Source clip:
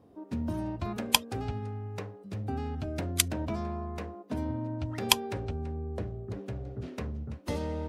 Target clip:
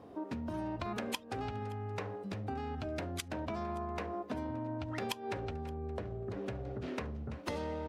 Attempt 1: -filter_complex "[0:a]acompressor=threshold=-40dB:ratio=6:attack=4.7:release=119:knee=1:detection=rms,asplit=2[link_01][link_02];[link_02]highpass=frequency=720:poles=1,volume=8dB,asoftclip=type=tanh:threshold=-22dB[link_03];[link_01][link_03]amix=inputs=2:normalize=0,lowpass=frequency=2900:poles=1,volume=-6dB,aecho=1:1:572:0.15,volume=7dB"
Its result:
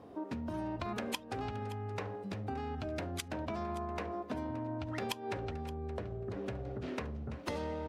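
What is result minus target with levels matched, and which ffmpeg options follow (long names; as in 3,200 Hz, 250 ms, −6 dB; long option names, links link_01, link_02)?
echo-to-direct +6.5 dB
-filter_complex "[0:a]acompressor=threshold=-40dB:ratio=6:attack=4.7:release=119:knee=1:detection=rms,asplit=2[link_01][link_02];[link_02]highpass=frequency=720:poles=1,volume=8dB,asoftclip=type=tanh:threshold=-22dB[link_03];[link_01][link_03]amix=inputs=2:normalize=0,lowpass=frequency=2900:poles=1,volume=-6dB,aecho=1:1:572:0.0708,volume=7dB"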